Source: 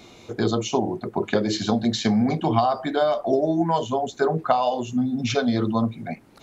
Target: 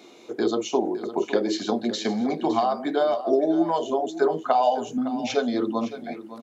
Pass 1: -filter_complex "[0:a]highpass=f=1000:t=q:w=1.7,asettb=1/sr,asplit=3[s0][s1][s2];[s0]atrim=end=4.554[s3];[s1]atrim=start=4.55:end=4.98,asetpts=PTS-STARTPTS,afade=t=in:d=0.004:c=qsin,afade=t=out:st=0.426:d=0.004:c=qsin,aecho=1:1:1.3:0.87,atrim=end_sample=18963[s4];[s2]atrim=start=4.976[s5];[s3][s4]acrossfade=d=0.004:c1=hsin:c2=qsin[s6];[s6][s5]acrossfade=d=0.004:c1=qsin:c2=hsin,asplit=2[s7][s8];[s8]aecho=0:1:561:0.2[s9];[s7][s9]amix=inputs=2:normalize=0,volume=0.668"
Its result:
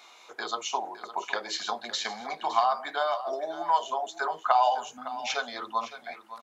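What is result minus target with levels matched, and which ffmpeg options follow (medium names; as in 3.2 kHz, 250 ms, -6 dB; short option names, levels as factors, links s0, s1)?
250 Hz band -18.0 dB
-filter_complex "[0:a]highpass=f=320:t=q:w=1.7,asettb=1/sr,asplit=3[s0][s1][s2];[s0]atrim=end=4.554[s3];[s1]atrim=start=4.55:end=4.98,asetpts=PTS-STARTPTS,afade=t=in:d=0.004:c=qsin,afade=t=out:st=0.426:d=0.004:c=qsin,aecho=1:1:1.3:0.87,atrim=end_sample=18963[s4];[s2]atrim=start=4.976[s5];[s3][s4]acrossfade=d=0.004:c1=hsin:c2=qsin[s6];[s6][s5]acrossfade=d=0.004:c1=qsin:c2=hsin,asplit=2[s7][s8];[s8]aecho=0:1:561:0.2[s9];[s7][s9]amix=inputs=2:normalize=0,volume=0.668"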